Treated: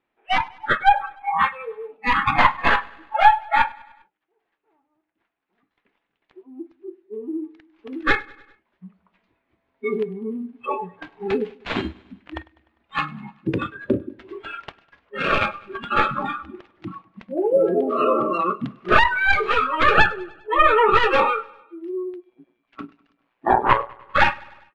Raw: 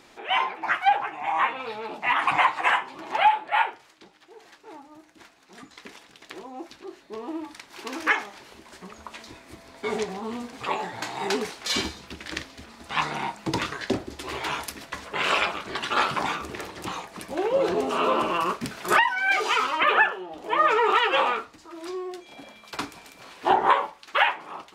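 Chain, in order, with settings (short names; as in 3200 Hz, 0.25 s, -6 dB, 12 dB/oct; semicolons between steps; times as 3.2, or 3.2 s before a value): tracing distortion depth 0.44 ms; spectral noise reduction 29 dB; careless resampling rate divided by 4×, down none, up zero stuff; on a send: feedback echo 0.1 s, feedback 57%, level -23 dB; 22.3–24.03 on the sum: AM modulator 120 Hz, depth 45%; LPF 2900 Hz 24 dB/oct; gain +5.5 dB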